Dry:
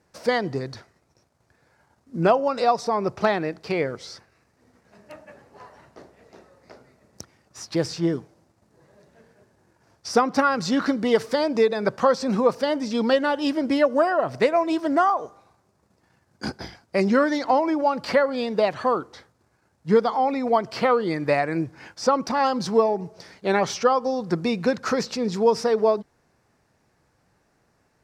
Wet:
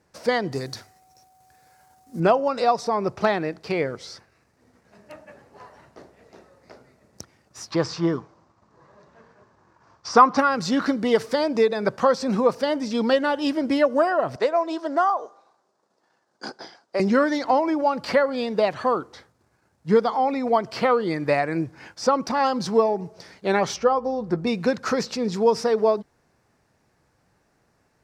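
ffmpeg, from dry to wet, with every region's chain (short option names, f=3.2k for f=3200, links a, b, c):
-filter_complex "[0:a]asettb=1/sr,asplit=3[a][b][c];[a]atrim=end=0.524[d];[b]atrim=start=0.52:end=2.2,asetpts=PTS-STARTPTS,afade=t=in:d=0.004:c=qsin,afade=t=out:st=1.676:d=0.004:c=qsin,aemphasis=mode=production:type=75fm,bandreject=f=50:t=h:w=6,bandreject=f=100:t=h:w=6,bandreject=f=150:t=h:w=6,bandreject=f=200:t=h:w=6,bandreject=f=250:t=h:w=6,bandreject=f=300:t=h:w=6,bandreject=f=350:t=h:w=6,aeval=exprs='val(0)+0.00158*sin(2*PI*750*n/s)':c=same[e];[c]atrim=start=2.196[f];[d][e]acrossfade=d=0.004:c1=hsin:c2=qsin[g];[g][f]acrossfade=d=0.004:c1=qsin:c2=hsin,asettb=1/sr,asplit=3[h][i][j];[h]atrim=end=7.714[k];[i]atrim=start=7.71:end=10.38,asetpts=PTS-STARTPTS,afade=t=in:d=0.004:c=qsin,afade=t=out:st=2.666:d=0.004:c=qsin,lowpass=f=6.8k:w=0.5412,lowpass=f=6.8k:w=1.3066,equalizer=f=1.1k:w=2.3:g=13[l];[j]atrim=start=10.376[m];[k][l]acrossfade=d=0.004:c1=hsin:c2=qsin[n];[n][m]acrossfade=d=0.004:c1=qsin:c2=hsin,asettb=1/sr,asplit=3[o][p][q];[o]atrim=end=14.364[r];[p]atrim=start=14.36:end=17,asetpts=PTS-STARTPTS,afade=t=in:d=0.004:c=qsin,afade=t=out:st=2.636:d=0.004:c=qsin,highpass=410,lowpass=6.6k,equalizer=f=2.3k:t=o:w=0.69:g=-8[s];[q]atrim=start=16.996[t];[r][s]acrossfade=d=0.004:c1=hsin:c2=qsin[u];[u][t]acrossfade=d=0.004:c1=qsin:c2=hsin,asettb=1/sr,asplit=3[v][w][x];[v]atrim=end=23.764[y];[w]atrim=start=23.76:end=24.47,asetpts=PTS-STARTPTS,afade=t=in:d=0.004:c=qsin,afade=t=out:st=0.706:d=0.004:c=qsin,highshelf=f=2k:g=-11.5,aeval=exprs='val(0)+0.00141*(sin(2*PI*60*n/s)+sin(2*PI*2*60*n/s)/2+sin(2*PI*3*60*n/s)/3+sin(2*PI*4*60*n/s)/4+sin(2*PI*5*60*n/s)/5)':c=same,asplit=2[z][aa];[aa]adelay=14,volume=-11dB[ab];[z][ab]amix=inputs=2:normalize=0,atrim=end_sample=31311[ac];[x]atrim=start=24.466[ad];[y][ac]acrossfade=d=0.004:c1=hsin:c2=qsin[ae];[ae][ad]acrossfade=d=0.004:c1=qsin:c2=hsin"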